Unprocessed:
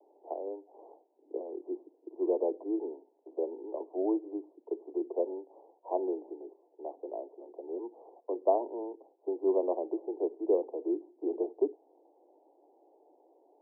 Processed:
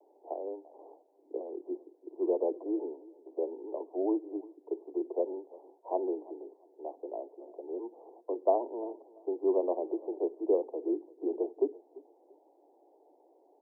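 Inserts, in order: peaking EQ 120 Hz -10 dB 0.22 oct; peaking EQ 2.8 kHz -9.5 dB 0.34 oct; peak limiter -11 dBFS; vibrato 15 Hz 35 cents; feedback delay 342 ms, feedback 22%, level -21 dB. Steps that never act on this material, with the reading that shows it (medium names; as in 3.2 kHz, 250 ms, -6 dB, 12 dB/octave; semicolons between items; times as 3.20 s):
peaking EQ 120 Hz: input has nothing below 240 Hz; peaking EQ 2.8 kHz: input has nothing above 1 kHz; peak limiter -11 dBFS: peak at its input -13.0 dBFS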